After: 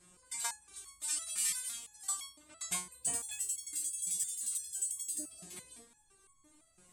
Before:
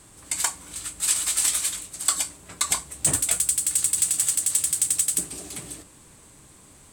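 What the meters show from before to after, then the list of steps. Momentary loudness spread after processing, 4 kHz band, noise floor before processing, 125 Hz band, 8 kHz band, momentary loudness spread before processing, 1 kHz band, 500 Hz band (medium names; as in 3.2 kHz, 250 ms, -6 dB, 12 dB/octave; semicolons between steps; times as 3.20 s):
15 LU, -14.0 dB, -51 dBFS, -20.5 dB, -13.5 dB, 13 LU, -12.5 dB, -14.5 dB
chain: feedback echo behind a low-pass 326 ms, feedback 32%, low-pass 3.8 kHz, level -23 dB; spectral gate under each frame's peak -25 dB strong; resonator arpeggio 5.9 Hz 180–1100 Hz; trim +1.5 dB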